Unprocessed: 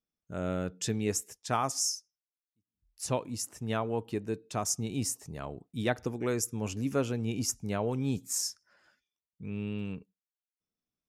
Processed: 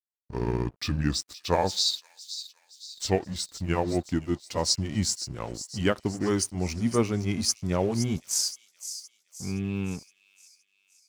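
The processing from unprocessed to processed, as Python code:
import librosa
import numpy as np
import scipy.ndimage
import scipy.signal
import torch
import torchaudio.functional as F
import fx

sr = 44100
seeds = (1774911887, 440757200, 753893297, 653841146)

y = fx.pitch_glide(x, sr, semitones=-7.0, runs='ending unshifted')
y = np.sign(y) * np.maximum(np.abs(y) - 10.0 ** (-52.0 / 20.0), 0.0)
y = fx.echo_wet_highpass(y, sr, ms=518, feedback_pct=48, hz=4100.0, wet_db=-9.5)
y = y * librosa.db_to_amplitude(7.0)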